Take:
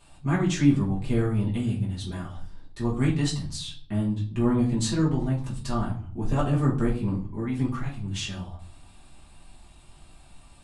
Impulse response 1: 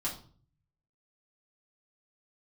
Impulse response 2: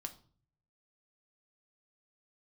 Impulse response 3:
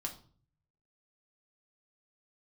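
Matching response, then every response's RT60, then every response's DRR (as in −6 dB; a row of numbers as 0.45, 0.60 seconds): 1; 0.45, 0.45, 0.45 seconds; −6.0, 5.5, 1.0 decibels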